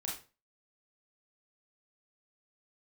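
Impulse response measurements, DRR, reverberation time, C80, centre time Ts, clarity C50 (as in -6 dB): -4.0 dB, 0.35 s, 11.5 dB, 37 ms, 4.5 dB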